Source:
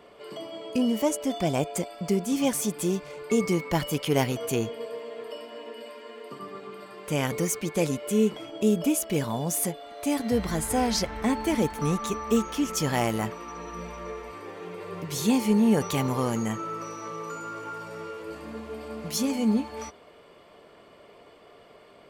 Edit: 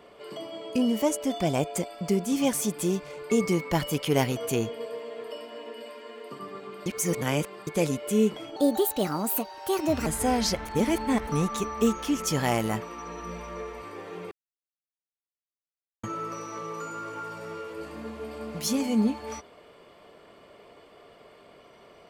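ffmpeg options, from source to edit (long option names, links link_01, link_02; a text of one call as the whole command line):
ffmpeg -i in.wav -filter_complex "[0:a]asplit=9[link_01][link_02][link_03][link_04][link_05][link_06][link_07][link_08][link_09];[link_01]atrim=end=6.862[link_10];[link_02]atrim=start=6.858:end=7.672,asetpts=PTS-STARTPTS,areverse[link_11];[link_03]atrim=start=7.668:end=8.564[link_12];[link_04]atrim=start=8.56:end=10.56,asetpts=PTS-STARTPTS,asetrate=58653,aresample=44100[link_13];[link_05]atrim=start=10.556:end=11.152[link_14];[link_06]atrim=start=11.148:end=11.772,asetpts=PTS-STARTPTS,areverse[link_15];[link_07]atrim=start=11.768:end=14.81,asetpts=PTS-STARTPTS,afade=type=out:start_time=3.038:duration=0.004:curve=hsin[link_16];[link_08]atrim=start=14.81:end=16.53,asetpts=PTS-STARTPTS,volume=0[link_17];[link_09]atrim=start=16.53,asetpts=PTS-STARTPTS,afade=type=in:duration=0.004:curve=hsin[link_18];[link_10][link_11]acrossfade=duration=0.004:curve1=hsin:curve2=hsin[link_19];[link_19][link_12]acrossfade=duration=0.004:curve1=hsin:curve2=hsin[link_20];[link_20][link_13]acrossfade=duration=0.004:curve1=hsin:curve2=hsin[link_21];[link_21][link_14]acrossfade=duration=0.004:curve1=hsin:curve2=hsin[link_22];[link_22][link_15]acrossfade=duration=0.004:curve1=hsin:curve2=hsin[link_23];[link_16][link_17][link_18]concat=n=3:v=0:a=1[link_24];[link_23][link_24]acrossfade=duration=0.004:curve1=hsin:curve2=hsin" out.wav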